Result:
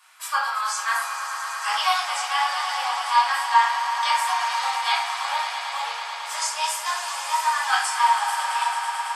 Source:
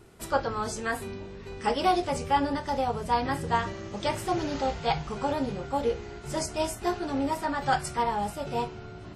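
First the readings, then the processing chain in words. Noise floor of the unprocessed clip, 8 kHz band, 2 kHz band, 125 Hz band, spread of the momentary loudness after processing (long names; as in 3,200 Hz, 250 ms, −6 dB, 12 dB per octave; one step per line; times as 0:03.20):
−43 dBFS, +10.5 dB, +11.0 dB, below −40 dB, 8 LU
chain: Butterworth high-pass 970 Hz 36 dB per octave
echo that builds up and dies away 110 ms, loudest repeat 5, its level −12 dB
rectangular room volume 740 cubic metres, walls furnished, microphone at 5.5 metres
level +3 dB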